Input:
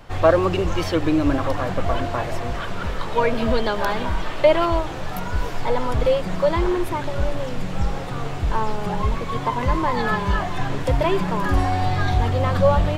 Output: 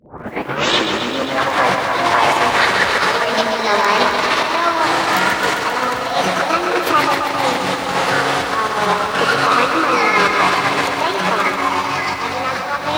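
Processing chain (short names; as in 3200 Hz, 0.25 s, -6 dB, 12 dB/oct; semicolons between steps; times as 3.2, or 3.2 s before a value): tape start at the beginning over 1.36 s; negative-ratio compressor -25 dBFS, ratio -1; formant shift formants +4 st; weighting filter A; reverse echo 37 ms -12 dB; maximiser +13 dB; lo-fi delay 0.133 s, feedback 80%, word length 7-bit, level -7 dB; gain -2 dB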